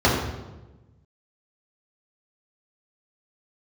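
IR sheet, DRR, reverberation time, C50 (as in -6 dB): -7.0 dB, 1.1 s, 2.0 dB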